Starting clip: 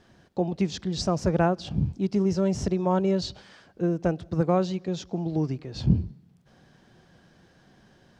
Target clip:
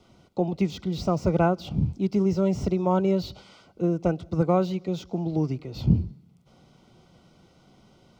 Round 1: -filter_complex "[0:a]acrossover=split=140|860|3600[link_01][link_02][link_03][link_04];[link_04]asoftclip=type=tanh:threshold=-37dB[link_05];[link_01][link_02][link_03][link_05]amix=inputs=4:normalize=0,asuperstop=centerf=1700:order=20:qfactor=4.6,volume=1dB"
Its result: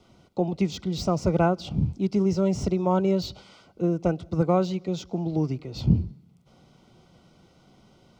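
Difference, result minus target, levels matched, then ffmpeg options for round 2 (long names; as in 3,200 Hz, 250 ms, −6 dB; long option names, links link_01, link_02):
soft clipping: distortion −7 dB
-filter_complex "[0:a]acrossover=split=140|860|3600[link_01][link_02][link_03][link_04];[link_04]asoftclip=type=tanh:threshold=-48.5dB[link_05];[link_01][link_02][link_03][link_05]amix=inputs=4:normalize=0,asuperstop=centerf=1700:order=20:qfactor=4.6,volume=1dB"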